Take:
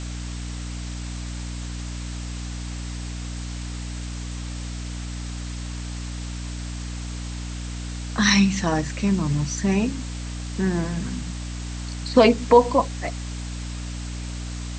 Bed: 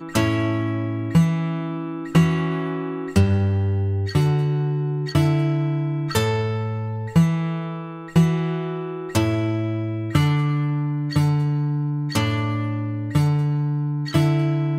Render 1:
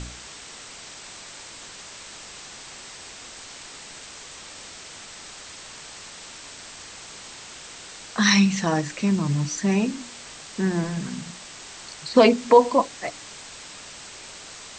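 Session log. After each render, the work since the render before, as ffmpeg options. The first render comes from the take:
-af "bandreject=f=60:t=h:w=4,bandreject=f=120:t=h:w=4,bandreject=f=180:t=h:w=4,bandreject=f=240:t=h:w=4,bandreject=f=300:t=h:w=4"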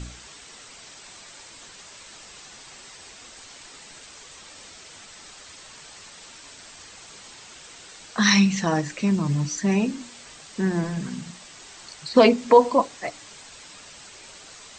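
-af "afftdn=nr=6:nf=-42"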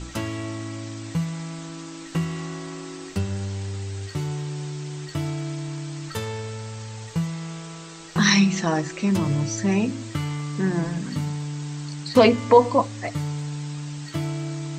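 -filter_complex "[1:a]volume=0.335[s0];[0:a][s0]amix=inputs=2:normalize=0"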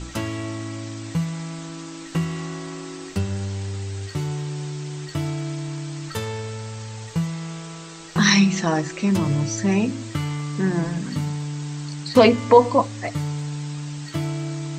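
-af "volume=1.19"

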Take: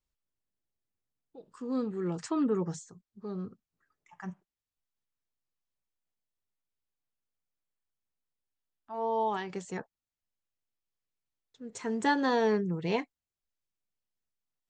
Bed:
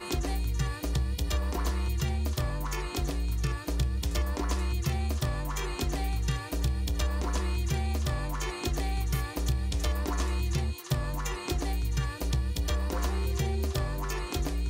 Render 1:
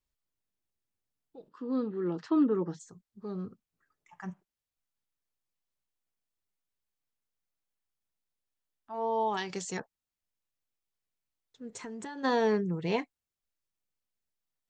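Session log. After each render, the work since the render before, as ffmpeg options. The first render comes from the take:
-filter_complex "[0:a]asplit=3[s0][s1][s2];[s0]afade=t=out:st=1.48:d=0.02[s3];[s1]highpass=180,equalizer=f=310:t=q:w=4:g=6,equalizer=f=740:t=q:w=4:g=-3,equalizer=f=2300:t=q:w=4:g=-7,lowpass=f=4300:w=0.5412,lowpass=f=4300:w=1.3066,afade=t=in:st=1.48:d=0.02,afade=t=out:st=2.79:d=0.02[s4];[s2]afade=t=in:st=2.79:d=0.02[s5];[s3][s4][s5]amix=inputs=3:normalize=0,asettb=1/sr,asplit=3[s6][s7][s8];[s6]atrim=end=9.374[s9];[s7]atrim=start=9.37:end=9.8,asetpts=PTS-STARTPTS,afade=t=in:d=0.004:c=qsin,afade=t=out:st=0.426:d=0.004:c=qsin,equalizer=f=5300:t=o:w=1.7:g=12[s10];[s8]atrim=start=9.796[s11];[s9][s10]acrossfade=d=0.004:c1=hsin:c2=qsin[s12];[s12][s11]acrossfade=d=0.004:c1=qsin:c2=hsin,asplit=3[s13][s14][s15];[s13]afade=t=out:st=11.7:d=0.02[s16];[s14]acompressor=threshold=0.0126:ratio=8:attack=3.2:release=140:knee=1:detection=peak,afade=t=in:st=11.7:d=0.02,afade=t=out:st=12.23:d=0.02[s17];[s15]afade=t=in:st=12.23:d=0.02[s18];[s16][s17][s18]amix=inputs=3:normalize=0"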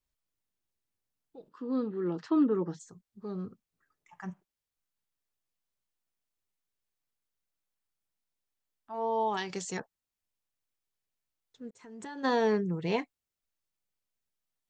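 -filter_complex "[0:a]asplit=2[s0][s1];[s0]atrim=end=11.71,asetpts=PTS-STARTPTS,afade=t=out:st=11.706:d=0.004:c=hsin[s2];[s1]atrim=start=11.71,asetpts=PTS-STARTPTS,afade=t=in:d=0.42[s3];[s2][s3]concat=n=2:v=0:a=1"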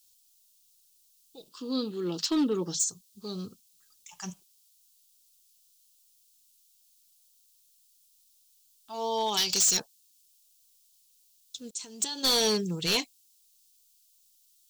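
-af "aexciter=amount=11.9:drive=7.6:freq=2900,volume=11.2,asoftclip=hard,volume=0.0891"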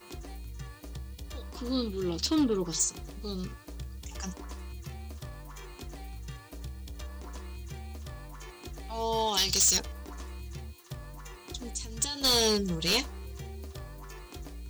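-filter_complex "[1:a]volume=0.237[s0];[0:a][s0]amix=inputs=2:normalize=0"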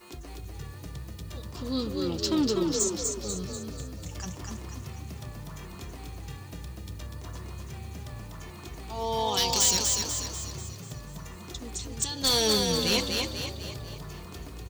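-filter_complex "[0:a]asplit=8[s0][s1][s2][s3][s4][s5][s6][s7];[s1]adelay=245,afreqshift=36,volume=0.668[s8];[s2]adelay=490,afreqshift=72,volume=0.335[s9];[s3]adelay=735,afreqshift=108,volume=0.168[s10];[s4]adelay=980,afreqshift=144,volume=0.0832[s11];[s5]adelay=1225,afreqshift=180,volume=0.0417[s12];[s6]adelay=1470,afreqshift=216,volume=0.0209[s13];[s7]adelay=1715,afreqshift=252,volume=0.0105[s14];[s0][s8][s9][s10][s11][s12][s13][s14]amix=inputs=8:normalize=0"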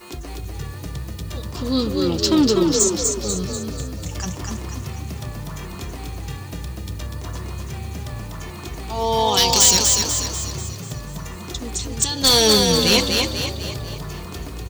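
-af "volume=2.99"

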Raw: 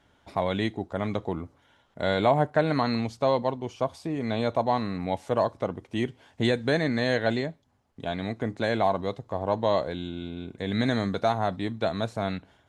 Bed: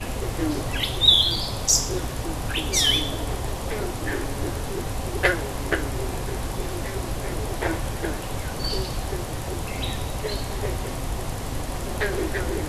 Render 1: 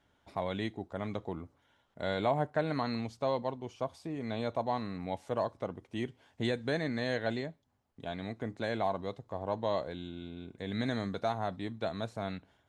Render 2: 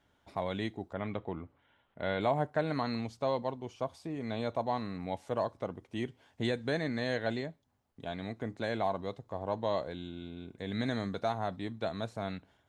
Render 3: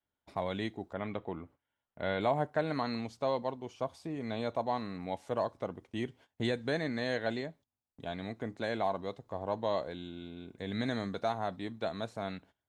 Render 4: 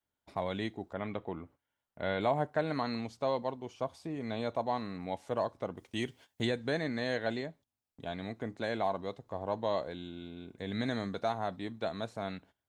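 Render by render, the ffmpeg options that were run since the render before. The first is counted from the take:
-af "volume=0.398"
-filter_complex "[0:a]asettb=1/sr,asplit=3[s0][s1][s2];[s0]atrim=end=0.934[s3];[s1]atrim=start=0.93:end=2.21,asetpts=PTS-STARTPTS,afade=t=in:d=0.004:c=qsin,afade=t=out:st=1.276:d=0.004:c=qsin,highshelf=f=4000:t=q:w=1.5:g=-12[s4];[s2]atrim=start=2.206[s5];[s3][s4]acrossfade=d=0.004:c1=hsin:c2=qsin[s6];[s6][s5]acrossfade=d=0.004:c1=qsin:c2=hsin"
-af "adynamicequalizer=threshold=0.00282:dfrequency=100:dqfactor=0.9:tfrequency=100:tqfactor=0.9:attack=5:release=100:ratio=0.375:range=2.5:mode=cutabove:tftype=bell,agate=range=0.112:threshold=0.00158:ratio=16:detection=peak"
-filter_complex "[0:a]asettb=1/sr,asplit=3[s0][s1][s2];[s0]atrim=end=5.774[s3];[s1]atrim=start=5.77:end=6.45,asetpts=PTS-STARTPTS,afade=t=in:d=0.004:c=qsin,afade=t=out:st=0.676:d=0.004:c=qsin,highshelf=f=2600:g=11[s4];[s2]atrim=start=6.446[s5];[s3][s4]acrossfade=d=0.004:c1=hsin:c2=qsin[s6];[s6][s5]acrossfade=d=0.004:c1=qsin:c2=hsin"

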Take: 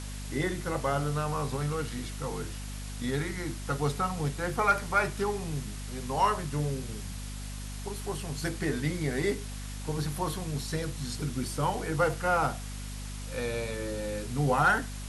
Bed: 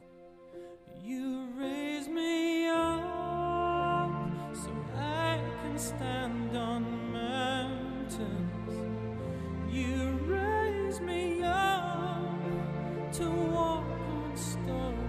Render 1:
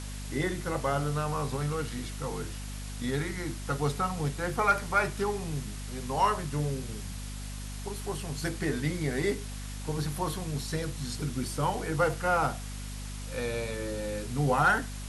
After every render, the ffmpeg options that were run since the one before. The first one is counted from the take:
-af anull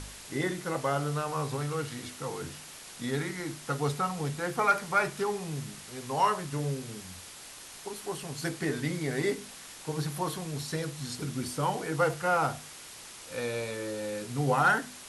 -af "bandreject=f=50:t=h:w=4,bandreject=f=100:t=h:w=4,bandreject=f=150:t=h:w=4,bandreject=f=200:t=h:w=4,bandreject=f=250:t=h:w=4"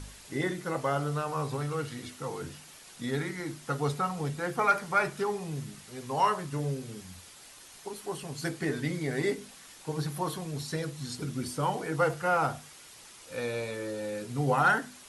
-af "afftdn=nr=6:nf=-47"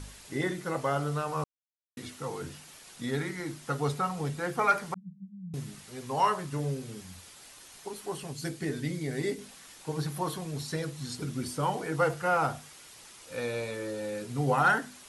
-filter_complex "[0:a]asettb=1/sr,asplit=3[s0][s1][s2];[s0]atrim=end=4.944[s3];[s1]atrim=start=4.94:end=5.54,asetpts=PTS-STARTPTS,afade=t=in:d=0.004:c=qsin,afade=t=out:st=0.596:d=0.004:c=qsin,asuperpass=centerf=180:order=8:qfactor=4.5[s4];[s2]atrim=start=5.536[s5];[s3][s4]acrossfade=d=0.004:c1=hsin:c2=qsin[s6];[s6][s5]acrossfade=d=0.004:c1=qsin:c2=hsin,asettb=1/sr,asplit=3[s7][s8][s9];[s7]atrim=end=8.324[s10];[s8]atrim=start=8.32:end=9.39,asetpts=PTS-STARTPTS,afade=t=in:d=0.004:c=qsin,afade=t=out:st=1.066:d=0.004:c=qsin,equalizer=f=1100:w=0.58:g=-7[s11];[s9]atrim=start=9.386[s12];[s10][s11]acrossfade=d=0.004:c1=hsin:c2=qsin[s13];[s13][s12]acrossfade=d=0.004:c1=qsin:c2=hsin,asplit=3[s14][s15][s16];[s14]atrim=end=1.44,asetpts=PTS-STARTPTS,afade=t=out:st=1.436:d=0.004:c=hsin[s17];[s15]atrim=start=1.44:end=1.97,asetpts=PTS-STARTPTS,volume=0[s18];[s16]atrim=start=1.97,asetpts=PTS-STARTPTS,afade=t=in:d=0.004:c=hsin[s19];[s17][s18][s19]concat=n=3:v=0:a=1"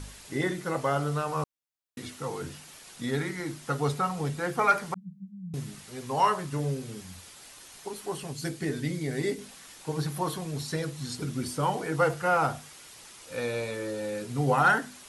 -af "volume=1.26"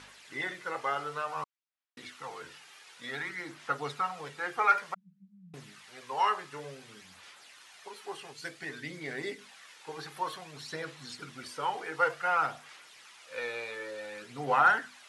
-af "bandpass=f=1900:t=q:w=0.77:csg=0,aphaser=in_gain=1:out_gain=1:delay=2.5:decay=0.37:speed=0.55:type=sinusoidal"

